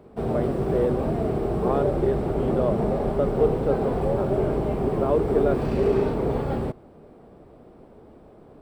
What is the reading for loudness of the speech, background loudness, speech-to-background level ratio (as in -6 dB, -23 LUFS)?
-28.0 LUFS, -25.0 LUFS, -3.0 dB